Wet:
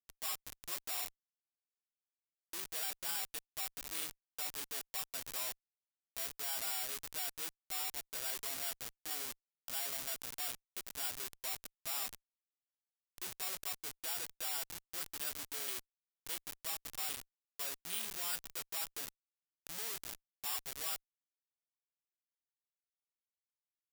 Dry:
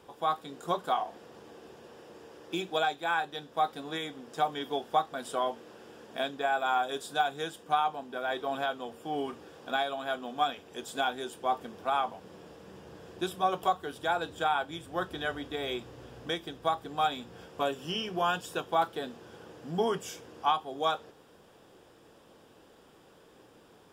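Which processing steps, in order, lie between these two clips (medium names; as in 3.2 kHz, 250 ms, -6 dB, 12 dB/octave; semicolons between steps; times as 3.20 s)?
sample-and-hold 7×; Schmitt trigger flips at -37 dBFS; pre-emphasis filter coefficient 0.97; trim +4 dB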